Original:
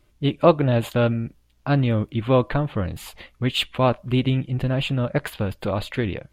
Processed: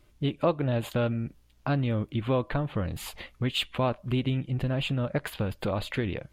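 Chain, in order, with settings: compression 2:1, threshold -29 dBFS, peak gain reduction 11 dB

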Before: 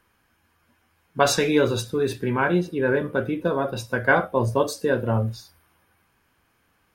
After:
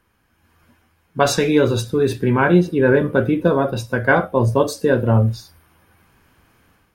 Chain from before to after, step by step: bass shelf 400 Hz +5.5 dB; level rider gain up to 9 dB; trim -1 dB

